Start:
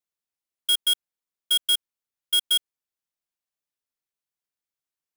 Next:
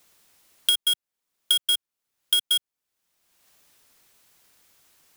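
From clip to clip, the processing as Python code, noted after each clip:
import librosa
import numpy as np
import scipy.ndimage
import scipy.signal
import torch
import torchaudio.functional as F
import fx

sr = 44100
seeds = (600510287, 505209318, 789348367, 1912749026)

y = fx.band_squash(x, sr, depth_pct=100)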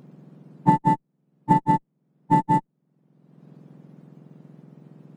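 y = fx.octave_mirror(x, sr, pivot_hz=1700.0)
y = fx.running_max(y, sr, window=3)
y = F.gain(torch.from_numpy(y), 2.0).numpy()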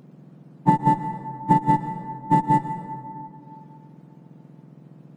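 y = fx.rev_plate(x, sr, seeds[0], rt60_s=2.8, hf_ratio=0.4, predelay_ms=105, drr_db=8.0)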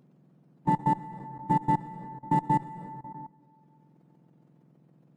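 y = fx.level_steps(x, sr, step_db=19)
y = F.gain(torch.from_numpy(y), -3.0).numpy()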